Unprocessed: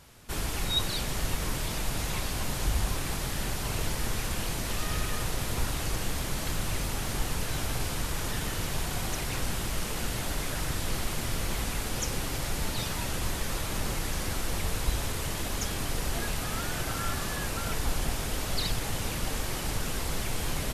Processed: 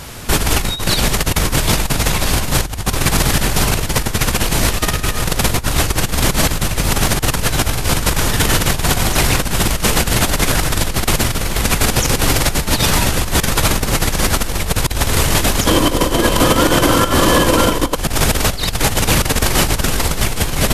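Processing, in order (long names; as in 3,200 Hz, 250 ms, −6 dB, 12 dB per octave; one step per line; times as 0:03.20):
compressor whose output falls as the input rises −33 dBFS, ratio −0.5
0:15.66–0:17.96: hollow resonant body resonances 320/510/1,000/3,100 Hz, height 13 dB, ringing for 30 ms
boost into a limiter +20 dB
level −1 dB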